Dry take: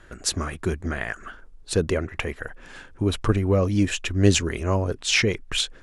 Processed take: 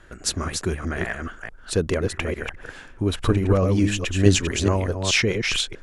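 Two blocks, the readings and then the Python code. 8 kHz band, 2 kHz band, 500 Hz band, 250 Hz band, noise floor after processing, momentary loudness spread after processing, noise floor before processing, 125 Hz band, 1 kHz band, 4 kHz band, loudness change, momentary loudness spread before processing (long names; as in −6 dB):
+1.0 dB, +1.5 dB, +1.5 dB, +1.5 dB, −45 dBFS, 13 LU, −49 dBFS, +1.5 dB, +1.5 dB, +1.0 dB, +1.0 dB, 12 LU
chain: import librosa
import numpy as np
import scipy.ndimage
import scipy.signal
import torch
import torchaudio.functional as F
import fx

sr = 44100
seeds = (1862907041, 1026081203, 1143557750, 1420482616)

y = fx.reverse_delay(x, sr, ms=213, wet_db=-4.5)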